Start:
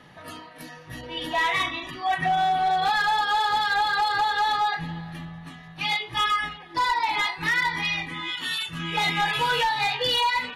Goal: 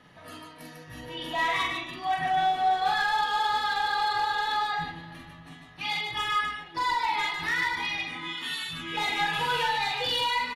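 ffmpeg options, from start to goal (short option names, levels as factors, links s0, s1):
-af "aecho=1:1:45|148:0.708|0.596,volume=0.501"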